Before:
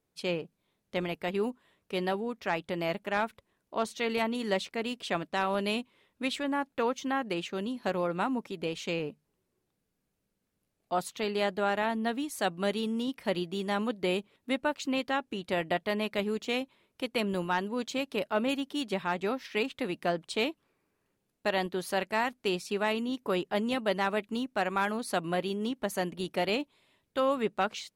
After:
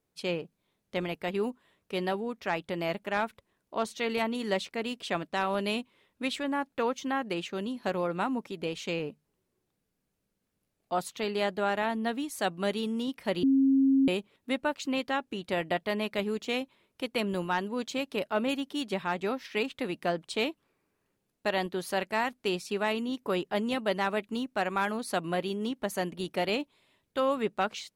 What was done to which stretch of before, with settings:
13.43–14.08 bleep 270 Hz -19.5 dBFS

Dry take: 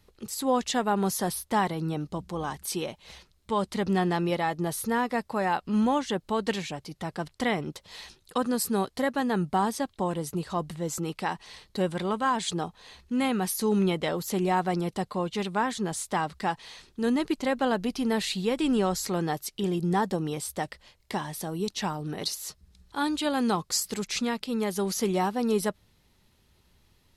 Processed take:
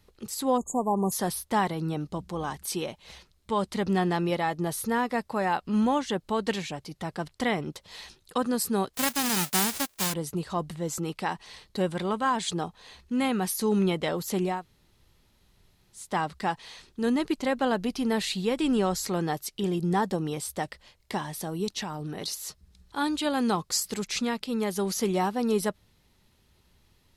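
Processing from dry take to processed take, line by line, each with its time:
0.58–1.12 spectral delete 1200–6500 Hz
8.93–10.12 spectral whitening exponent 0.1
14.54–16.04 room tone, crossfade 0.24 s
21.82–22.28 compressor, threshold -30 dBFS

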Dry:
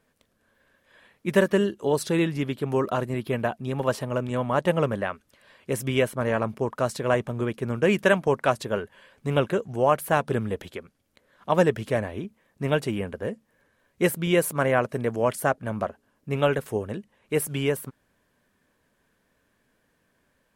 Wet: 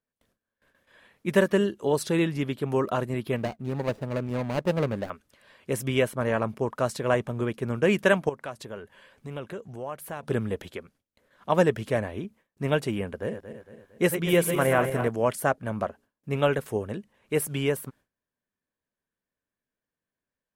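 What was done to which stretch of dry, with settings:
3.36–5.1 median filter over 41 samples
8.29–10.23 compressor 2:1, threshold -41 dBFS
13.19–15.08 regenerating reverse delay 0.114 s, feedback 67%, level -8 dB
whole clip: gate with hold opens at -54 dBFS; gain -1 dB

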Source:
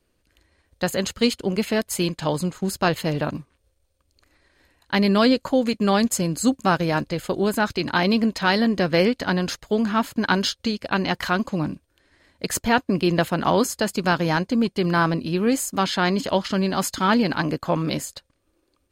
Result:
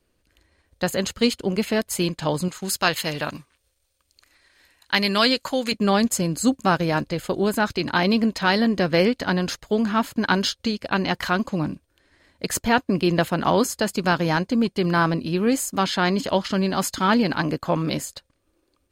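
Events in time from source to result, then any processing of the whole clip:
2.48–5.72 tilt shelf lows -7 dB

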